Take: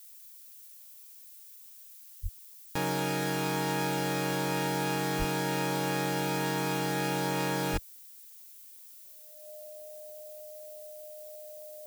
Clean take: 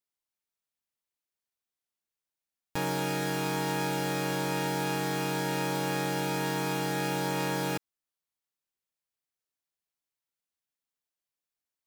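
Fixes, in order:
notch filter 610 Hz, Q 30
0:02.22–0:02.34: high-pass filter 140 Hz 24 dB per octave
0:05.18–0:05.30: high-pass filter 140 Hz 24 dB per octave
0:07.72–0:07.84: high-pass filter 140 Hz 24 dB per octave
noise reduction from a noise print 30 dB
level 0 dB, from 0:08.79 +10.5 dB

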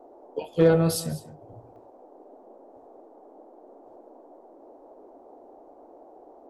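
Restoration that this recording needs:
clipped peaks rebuilt −10 dBFS
repair the gap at 0:01.76, 1.6 ms
noise reduction from a noise print 25 dB
echo removal 198 ms −16.5 dB

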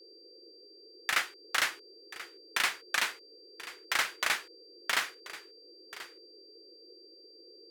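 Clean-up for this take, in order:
notch filter 4,700 Hz, Q 30
noise reduction from a noise print 23 dB
echo removal 1,034 ms −15.5 dB

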